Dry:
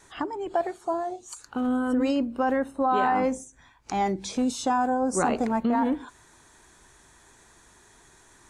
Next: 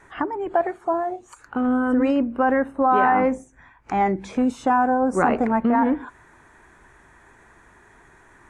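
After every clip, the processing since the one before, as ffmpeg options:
-af "highshelf=f=2.9k:t=q:w=1.5:g=-12.5,volume=4.5dB"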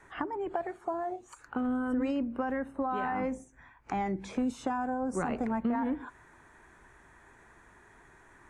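-filter_complex "[0:a]acrossover=split=190|3000[a][b][c];[b]acompressor=threshold=-25dB:ratio=6[d];[a][d][c]amix=inputs=3:normalize=0,volume=-5.5dB"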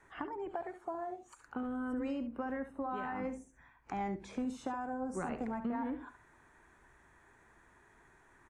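-af "aecho=1:1:70:0.299,volume=-6.5dB"

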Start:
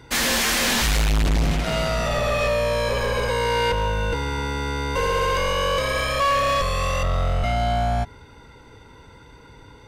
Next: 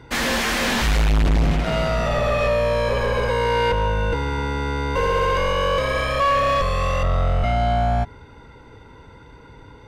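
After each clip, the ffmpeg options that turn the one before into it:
-af "highshelf=f=4k:g=-11.5,volume=2.5dB"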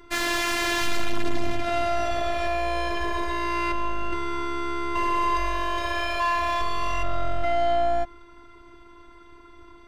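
-af "afftfilt=real='hypot(re,im)*cos(PI*b)':imag='0':win_size=512:overlap=0.75"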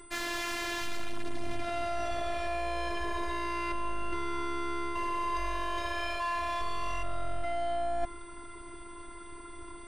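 -af "areverse,acompressor=threshold=-30dB:ratio=10,areverse,aeval=exprs='val(0)+0.00158*sin(2*PI*8100*n/s)':c=same,volume=2.5dB"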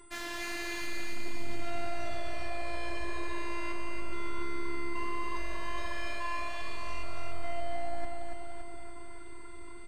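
-af "flanger=delay=1.7:depth=5.4:regen=85:speed=1.5:shape=triangular,aecho=1:1:284|568|852|1136|1420|1704|1988|2272:0.631|0.366|0.212|0.123|0.0714|0.0414|0.024|0.0139"

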